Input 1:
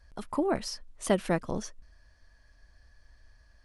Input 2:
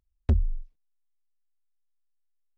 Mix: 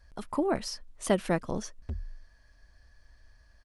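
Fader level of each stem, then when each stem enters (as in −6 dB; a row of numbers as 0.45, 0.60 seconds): 0.0, −14.0 decibels; 0.00, 1.60 seconds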